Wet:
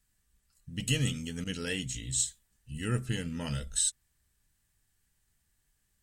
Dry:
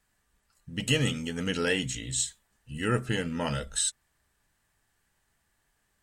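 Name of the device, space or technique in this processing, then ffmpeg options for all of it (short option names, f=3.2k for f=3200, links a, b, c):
smiley-face EQ: -filter_complex "[0:a]lowshelf=f=140:g=6,equalizer=f=820:t=o:w=2.6:g=-9,highshelf=f=5.4k:g=5,asettb=1/sr,asplit=3[a][b][c];[a]atrim=end=1.444[d];[b]atrim=start=1.44:end=1.95,asetpts=PTS-STARTPTS,afade=t=in:d=0.004:c=qsin,afade=t=out:st=0.506:d=0.004:c=qsin,agate=range=-33dB:threshold=-28dB:ratio=3:detection=peak[e];[c]atrim=start=1.946[f];[d][e]acrossfade=d=0.004:c1=hsin:c2=qsin[g];[g][f]acrossfade=d=0.004:c1=qsin:c2=hsin,volume=-3dB"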